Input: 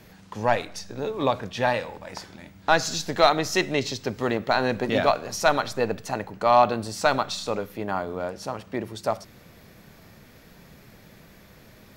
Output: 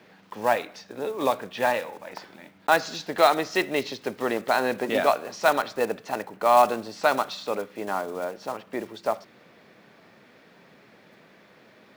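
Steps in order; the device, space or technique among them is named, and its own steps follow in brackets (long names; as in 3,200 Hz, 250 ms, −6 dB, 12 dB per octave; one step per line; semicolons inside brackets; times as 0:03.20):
early digital voice recorder (band-pass filter 260–3,600 Hz; one scale factor per block 5 bits)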